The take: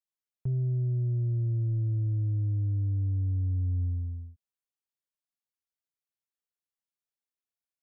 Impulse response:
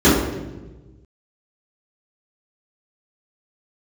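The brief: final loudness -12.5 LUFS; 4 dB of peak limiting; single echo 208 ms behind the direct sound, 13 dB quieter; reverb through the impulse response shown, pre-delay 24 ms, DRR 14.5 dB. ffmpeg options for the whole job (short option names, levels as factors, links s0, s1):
-filter_complex "[0:a]alimiter=level_in=1.78:limit=0.0631:level=0:latency=1,volume=0.562,aecho=1:1:208:0.224,asplit=2[s0][s1];[1:a]atrim=start_sample=2205,adelay=24[s2];[s1][s2]afir=irnorm=-1:irlink=0,volume=0.00891[s3];[s0][s3]amix=inputs=2:normalize=0,volume=10.6"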